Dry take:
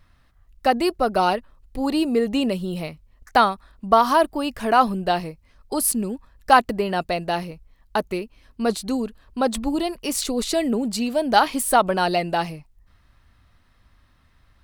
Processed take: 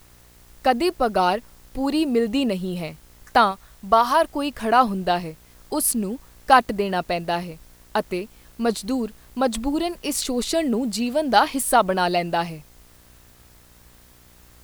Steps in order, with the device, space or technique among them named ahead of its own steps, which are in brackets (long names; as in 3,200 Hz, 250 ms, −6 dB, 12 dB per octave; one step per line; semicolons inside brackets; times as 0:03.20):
video cassette with head-switching buzz (hum with harmonics 60 Hz, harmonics 36, −55 dBFS −5 dB per octave; white noise bed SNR 32 dB)
0:03.51–0:04.30: parametric band 270 Hz −6 dB 1.3 octaves